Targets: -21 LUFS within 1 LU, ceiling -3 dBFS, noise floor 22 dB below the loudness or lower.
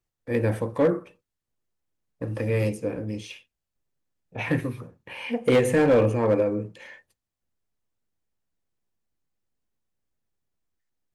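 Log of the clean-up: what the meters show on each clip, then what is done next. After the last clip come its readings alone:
clipped samples 0.4%; clipping level -13.5 dBFS; loudness -24.5 LUFS; peak level -13.5 dBFS; loudness target -21.0 LUFS
-> clip repair -13.5 dBFS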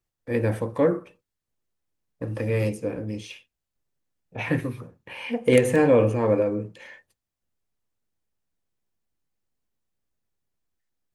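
clipped samples 0.0%; loudness -24.0 LUFS; peak level -4.5 dBFS; loudness target -21.0 LUFS
-> trim +3 dB; peak limiter -3 dBFS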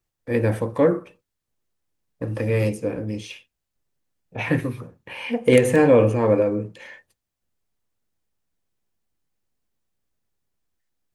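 loudness -21.0 LUFS; peak level -3.0 dBFS; noise floor -82 dBFS

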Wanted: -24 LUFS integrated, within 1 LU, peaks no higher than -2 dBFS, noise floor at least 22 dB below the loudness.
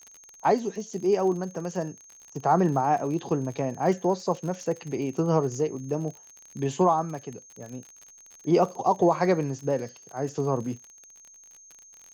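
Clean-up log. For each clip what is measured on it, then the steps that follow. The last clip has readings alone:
tick rate 47 per s; steady tone 6.4 kHz; tone level -49 dBFS; loudness -26.5 LUFS; peak level -9.5 dBFS; loudness target -24.0 LUFS
-> de-click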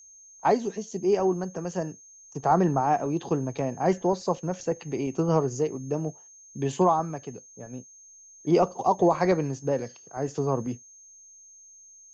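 tick rate 0 per s; steady tone 6.4 kHz; tone level -49 dBFS
-> band-stop 6.4 kHz, Q 30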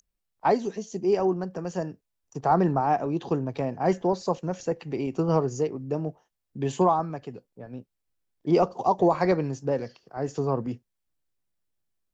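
steady tone not found; loudness -26.5 LUFS; peak level -9.5 dBFS; loudness target -24.0 LUFS
-> trim +2.5 dB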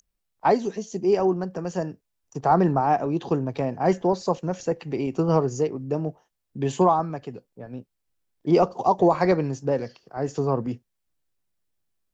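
loudness -24.0 LUFS; peak level -7.0 dBFS; noise floor -78 dBFS

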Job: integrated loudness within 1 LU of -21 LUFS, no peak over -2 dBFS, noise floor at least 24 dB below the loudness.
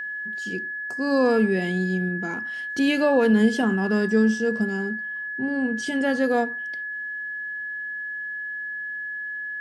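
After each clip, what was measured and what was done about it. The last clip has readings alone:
steady tone 1.7 kHz; tone level -29 dBFS; loudness -24.5 LUFS; peak level -8.5 dBFS; loudness target -21.0 LUFS
-> band-stop 1.7 kHz, Q 30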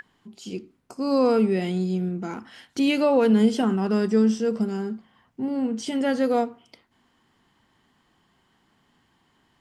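steady tone not found; loudness -23.5 LUFS; peak level -9.5 dBFS; loudness target -21.0 LUFS
-> trim +2.5 dB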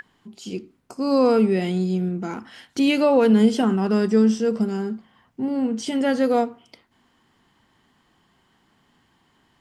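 loudness -21.0 LUFS; peak level -7.0 dBFS; noise floor -64 dBFS

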